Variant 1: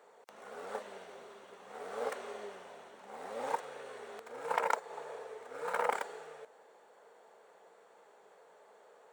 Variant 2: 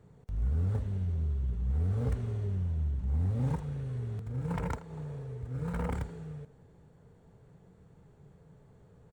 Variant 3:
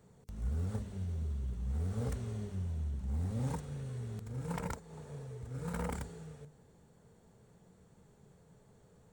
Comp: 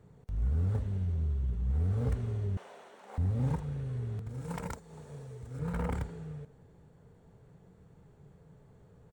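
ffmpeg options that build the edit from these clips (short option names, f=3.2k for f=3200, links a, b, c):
-filter_complex "[1:a]asplit=3[a][b][c];[a]atrim=end=2.572[d];[0:a]atrim=start=2.568:end=3.182[e];[b]atrim=start=3.178:end=4.292[f];[2:a]atrim=start=4.288:end=5.592[g];[c]atrim=start=5.588[h];[d][e]acrossfade=d=0.004:c1=hsin:c2=hsin[i];[i][f]acrossfade=d=0.004:c1=hsin:c2=hsin[j];[j][g]acrossfade=d=0.004:c1=hsin:c2=hsin[k];[k][h]acrossfade=d=0.004:c1=hsin:c2=hsin"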